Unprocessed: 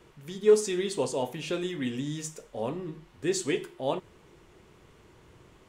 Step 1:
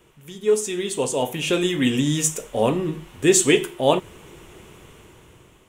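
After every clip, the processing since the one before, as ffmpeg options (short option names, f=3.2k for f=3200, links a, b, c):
-af "dynaudnorm=f=330:g=7:m=14dB,aexciter=amount=1.5:drive=3.2:freq=2.5k"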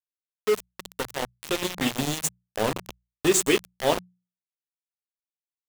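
-af "aeval=exprs='val(0)*gte(abs(val(0)),0.133)':c=same,bandreject=f=60:t=h:w=6,bandreject=f=120:t=h:w=6,bandreject=f=180:t=h:w=6,volume=-4.5dB"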